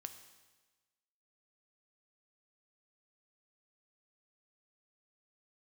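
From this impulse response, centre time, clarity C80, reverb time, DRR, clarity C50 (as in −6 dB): 15 ms, 11.5 dB, 1.3 s, 7.5 dB, 10.5 dB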